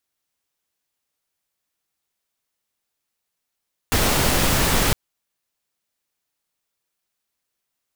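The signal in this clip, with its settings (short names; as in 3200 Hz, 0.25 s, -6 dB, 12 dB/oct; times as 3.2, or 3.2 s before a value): noise pink, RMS -18.5 dBFS 1.01 s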